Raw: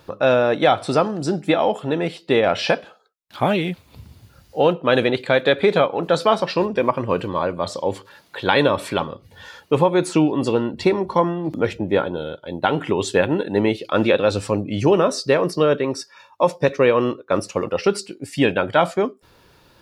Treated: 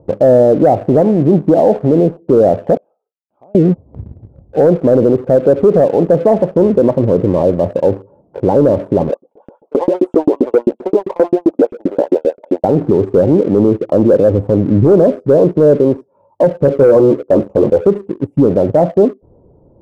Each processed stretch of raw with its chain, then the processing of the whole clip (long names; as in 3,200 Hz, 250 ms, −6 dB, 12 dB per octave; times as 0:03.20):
0:02.77–0:03.55: resonant band-pass 2,300 Hz, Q 1.8 + downward compressor 2 to 1, threshold −51 dBFS
0:09.09–0:12.64: Butterworth high-pass 180 Hz + auto-filter high-pass saw up 7.6 Hz 250–3,700 Hz
0:16.65–0:17.87: dynamic equaliser 1,100 Hz, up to +4 dB, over −29 dBFS, Q 0.81 + double-tracking delay 14 ms −5.5 dB
whole clip: inverse Chebyshev low-pass filter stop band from 1,700 Hz, stop band 50 dB; leveller curve on the samples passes 1; boost into a limiter +12 dB; level −1 dB